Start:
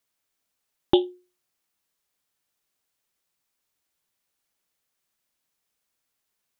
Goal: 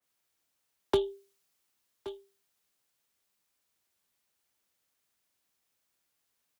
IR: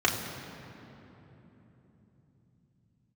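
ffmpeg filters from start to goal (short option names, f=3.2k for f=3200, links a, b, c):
-filter_complex "[0:a]acrossover=split=220|810[a][b][c];[c]asoftclip=type=hard:threshold=-25dB[d];[a][b][d]amix=inputs=3:normalize=0,afreqshift=35,asoftclip=type=tanh:threshold=-13dB,asplit=2[e][f];[f]aecho=0:1:1123:0.112[g];[e][g]amix=inputs=2:normalize=0,acrossover=split=280[h][i];[i]acompressor=threshold=-26dB:ratio=6[j];[h][j]amix=inputs=2:normalize=0,adynamicequalizer=threshold=0.00282:dfrequency=2600:dqfactor=0.7:tfrequency=2600:tqfactor=0.7:attack=5:release=100:ratio=0.375:range=3:mode=boostabove:tftype=highshelf"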